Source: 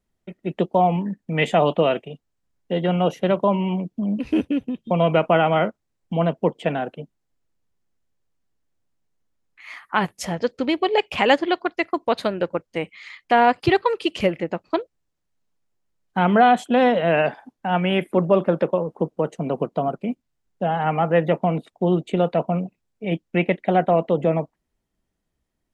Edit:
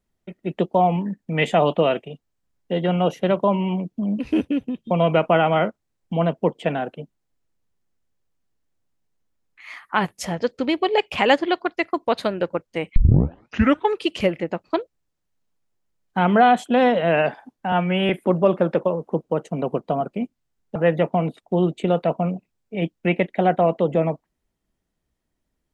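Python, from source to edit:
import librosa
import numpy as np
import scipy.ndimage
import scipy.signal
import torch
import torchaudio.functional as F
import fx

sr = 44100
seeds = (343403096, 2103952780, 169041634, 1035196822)

y = fx.edit(x, sr, fx.tape_start(start_s=12.96, length_s=1.03),
    fx.stretch_span(start_s=17.72, length_s=0.25, factor=1.5),
    fx.cut(start_s=20.63, length_s=0.42), tone=tone)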